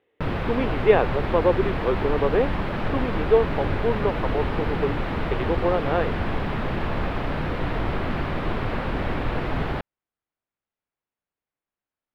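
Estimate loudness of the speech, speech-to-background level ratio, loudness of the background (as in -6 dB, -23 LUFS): -25.0 LUFS, 2.5 dB, -27.5 LUFS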